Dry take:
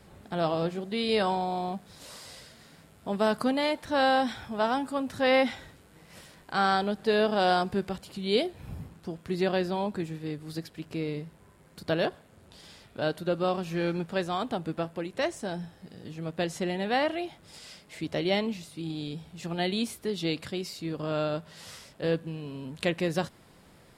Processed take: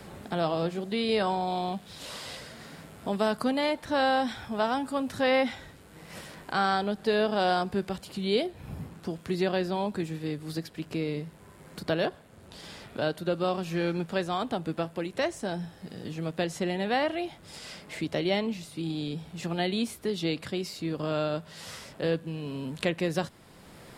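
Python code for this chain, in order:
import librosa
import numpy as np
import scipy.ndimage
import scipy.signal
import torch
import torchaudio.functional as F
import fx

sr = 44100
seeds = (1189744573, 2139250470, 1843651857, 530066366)

y = fx.peak_eq(x, sr, hz=3200.0, db=6.5, octaves=0.86, at=(1.47, 2.37))
y = fx.band_squash(y, sr, depth_pct=40)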